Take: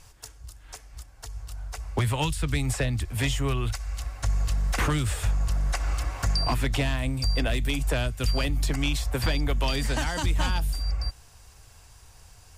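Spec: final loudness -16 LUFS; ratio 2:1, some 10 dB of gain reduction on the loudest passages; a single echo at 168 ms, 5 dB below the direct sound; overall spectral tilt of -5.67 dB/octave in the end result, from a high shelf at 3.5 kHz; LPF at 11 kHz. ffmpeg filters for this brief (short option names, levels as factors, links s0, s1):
-af "lowpass=11000,highshelf=f=3500:g=-8.5,acompressor=threshold=0.01:ratio=2,aecho=1:1:168:0.562,volume=10.6"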